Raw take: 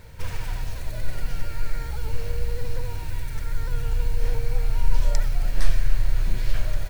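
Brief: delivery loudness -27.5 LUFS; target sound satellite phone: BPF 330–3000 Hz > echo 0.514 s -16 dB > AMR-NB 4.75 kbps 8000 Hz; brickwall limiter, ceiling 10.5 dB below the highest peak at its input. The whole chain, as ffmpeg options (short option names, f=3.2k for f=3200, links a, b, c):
-af "alimiter=limit=-14.5dB:level=0:latency=1,highpass=330,lowpass=3k,aecho=1:1:514:0.158,volume=19dB" -ar 8000 -c:a libopencore_amrnb -b:a 4750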